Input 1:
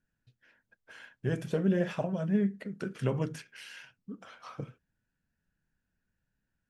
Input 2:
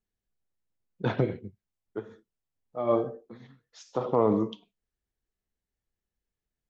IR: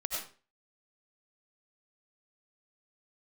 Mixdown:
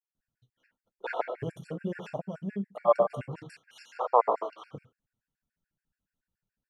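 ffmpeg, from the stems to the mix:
-filter_complex "[0:a]adelay=150,volume=-4dB[link_01];[1:a]agate=range=-11dB:threshold=-58dB:ratio=16:detection=peak,highpass=frequency=600:width=0.5412,highpass=frequency=600:width=1.3066,highshelf=frequency=2100:gain=-7.5,volume=2dB,asplit=2[link_02][link_03];[link_03]volume=-8.5dB[link_04];[2:a]atrim=start_sample=2205[link_05];[link_04][link_05]afir=irnorm=-1:irlink=0[link_06];[link_01][link_02][link_06]amix=inputs=3:normalize=0,adynamicequalizer=threshold=0.0141:dfrequency=840:dqfactor=0.97:tfrequency=840:tqfactor=0.97:attack=5:release=100:ratio=0.375:range=3.5:mode=boostabove:tftype=bell,afftfilt=real='re*gt(sin(2*PI*7*pts/sr)*(1-2*mod(floor(b*sr/1024/1400),2)),0)':imag='im*gt(sin(2*PI*7*pts/sr)*(1-2*mod(floor(b*sr/1024/1400),2)),0)':win_size=1024:overlap=0.75"

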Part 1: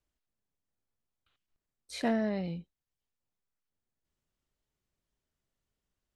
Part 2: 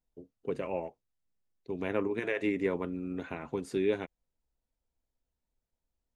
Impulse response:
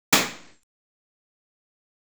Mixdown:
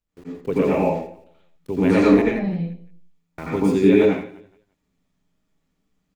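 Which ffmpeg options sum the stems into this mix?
-filter_complex "[0:a]tremolo=f=170:d=0.75,acompressor=threshold=-52dB:ratio=1.5,volume=-0.5dB,asplit=2[link_01][link_02];[link_02]volume=-17dB[link_03];[1:a]aeval=exprs='val(0)*gte(abs(val(0)),0.00282)':channel_layout=same,volume=1dB,asplit=3[link_04][link_05][link_06];[link_04]atrim=end=2.22,asetpts=PTS-STARTPTS,afade=type=out:start_time=2.216:duration=0.004:curve=hsin[link_07];[link_05]atrim=start=2.22:end=3.38,asetpts=PTS-STARTPTS,volume=0[link_08];[link_06]atrim=start=3.38,asetpts=PTS-STARTPTS,afade=type=in:duration=0.004:curve=hsin[link_09];[link_07][link_08][link_09]concat=n=3:v=0:a=1,asplit=3[link_10][link_11][link_12];[link_11]volume=-19.5dB[link_13];[link_12]volume=-10.5dB[link_14];[2:a]atrim=start_sample=2205[link_15];[link_03][link_13]amix=inputs=2:normalize=0[link_16];[link_16][link_15]afir=irnorm=-1:irlink=0[link_17];[link_14]aecho=0:1:172|344|516|688:1|0.3|0.09|0.027[link_18];[link_01][link_10][link_17][link_18]amix=inputs=4:normalize=0,lowshelf=frequency=110:gain=8.5,dynaudnorm=framelen=190:gausssize=3:maxgain=7dB"

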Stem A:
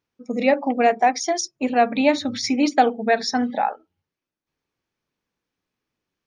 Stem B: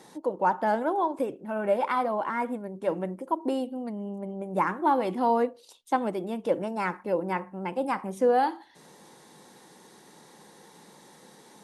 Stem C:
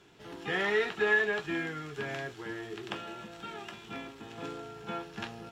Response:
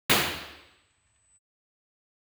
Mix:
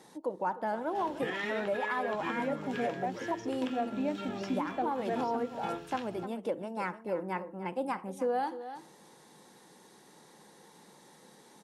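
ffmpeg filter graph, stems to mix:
-filter_complex "[0:a]tiltshelf=frequency=1300:gain=8,adelay=2000,volume=-18.5dB[link_01];[1:a]volume=-4.5dB,asplit=2[link_02][link_03];[link_03]volume=-14.5dB[link_04];[2:a]alimiter=level_in=2dB:limit=-24dB:level=0:latency=1:release=268,volume=-2dB,acrossover=split=1300[link_05][link_06];[link_05]aeval=exprs='val(0)*(1-0.5/2+0.5/2*cos(2*PI*2.2*n/s))':channel_layout=same[link_07];[link_06]aeval=exprs='val(0)*(1-0.5/2-0.5/2*cos(2*PI*2.2*n/s))':channel_layout=same[link_08];[link_07][link_08]amix=inputs=2:normalize=0,adelay=750,volume=2.5dB[link_09];[link_04]aecho=0:1:301:1[link_10];[link_01][link_02][link_09][link_10]amix=inputs=4:normalize=0,alimiter=limit=-22.5dB:level=0:latency=1:release=406"

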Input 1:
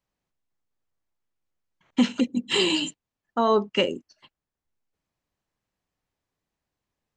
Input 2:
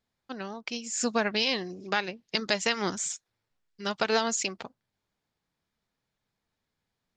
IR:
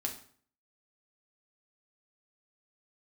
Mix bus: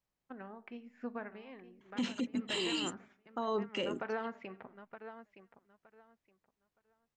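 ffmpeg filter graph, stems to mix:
-filter_complex "[0:a]volume=-5.5dB[link_01];[1:a]agate=range=-16dB:threshold=-44dB:ratio=16:detection=peak,lowpass=frequency=2000:width=0.5412,lowpass=frequency=2000:width=1.3066,volume=-2dB,afade=type=out:start_time=0.88:duration=0.46:silence=0.316228,afade=type=in:start_time=2.22:duration=0.39:silence=0.298538,asplit=3[link_02][link_03][link_04];[link_03]volume=-9dB[link_05];[link_04]volume=-10dB[link_06];[2:a]atrim=start_sample=2205[link_07];[link_05][link_07]afir=irnorm=-1:irlink=0[link_08];[link_06]aecho=0:1:918|1836|2754:1|0.2|0.04[link_09];[link_01][link_02][link_08][link_09]amix=inputs=4:normalize=0,alimiter=level_in=2dB:limit=-24dB:level=0:latency=1:release=42,volume=-2dB"

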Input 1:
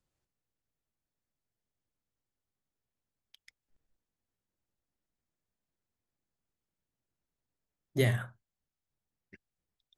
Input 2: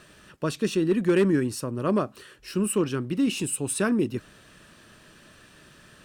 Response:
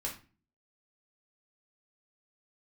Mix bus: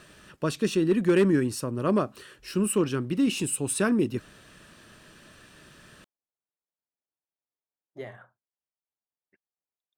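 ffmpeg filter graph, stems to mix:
-filter_complex "[0:a]bandpass=frequency=770:width_type=q:width=1:csg=0,volume=-5dB[link_01];[1:a]volume=0dB[link_02];[link_01][link_02]amix=inputs=2:normalize=0"

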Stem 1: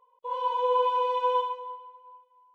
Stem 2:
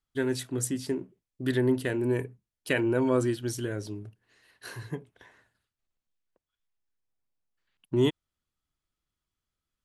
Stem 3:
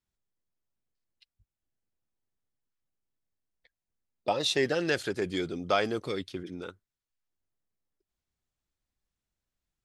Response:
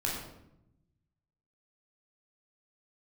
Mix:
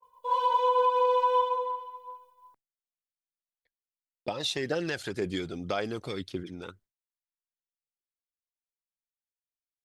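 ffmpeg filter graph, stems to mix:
-filter_complex "[0:a]aexciter=amount=2.9:drive=3.9:freq=3900,adynamicequalizer=threshold=0.00501:dfrequency=3300:dqfactor=0.7:tfrequency=3300:tqfactor=0.7:attack=5:release=100:ratio=0.375:range=3:mode=cutabove:tftype=highshelf,volume=0dB,asplit=2[link_01][link_02];[link_02]volume=-5.5dB[link_03];[2:a]acompressor=threshold=-28dB:ratio=4,volume=0dB[link_04];[3:a]atrim=start_sample=2205[link_05];[link_03][link_05]afir=irnorm=-1:irlink=0[link_06];[link_01][link_04][link_06]amix=inputs=3:normalize=0,aphaser=in_gain=1:out_gain=1:delay=1.5:decay=0.37:speed=1.9:type=triangular,agate=range=-33dB:threshold=-56dB:ratio=3:detection=peak,alimiter=limit=-16.5dB:level=0:latency=1:release=219"

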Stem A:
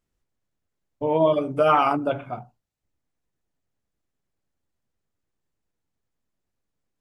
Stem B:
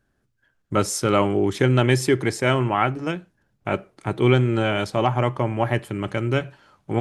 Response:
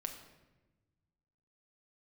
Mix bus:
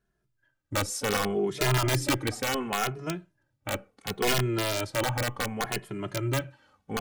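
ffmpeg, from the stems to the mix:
-filter_complex "[0:a]acompressor=threshold=-27dB:ratio=6,volume=-9dB[link_01];[1:a]aeval=exprs='(mod(3.35*val(0)+1,2)-1)/3.35':channel_layout=same,volume=-4dB[link_02];[link_01][link_02]amix=inputs=2:normalize=0,asplit=2[link_03][link_04];[link_04]adelay=2.4,afreqshift=-0.69[link_05];[link_03][link_05]amix=inputs=2:normalize=1"

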